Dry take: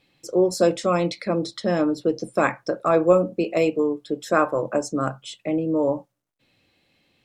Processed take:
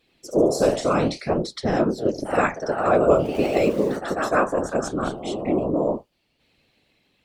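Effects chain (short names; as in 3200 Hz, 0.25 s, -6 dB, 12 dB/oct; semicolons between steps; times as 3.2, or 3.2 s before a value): 3.35–3.97 zero-crossing step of -33 dBFS; whisperiser; echoes that change speed 85 ms, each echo +1 st, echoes 3, each echo -6 dB; gain -1 dB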